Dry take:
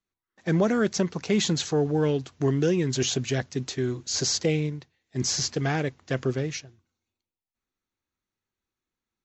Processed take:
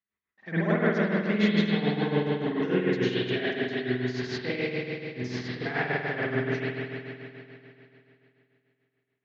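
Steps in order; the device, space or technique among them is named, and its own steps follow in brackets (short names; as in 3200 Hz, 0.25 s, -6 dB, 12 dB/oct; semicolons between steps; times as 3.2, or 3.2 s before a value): combo amplifier with spring reverb and tremolo (spring tank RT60 3 s, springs 48 ms, chirp 60 ms, DRR -10 dB; tremolo 6.9 Hz, depth 62%; speaker cabinet 85–4100 Hz, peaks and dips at 140 Hz -8 dB, 310 Hz -5 dB, 500 Hz -5 dB, 1900 Hz +9 dB); gain -6.5 dB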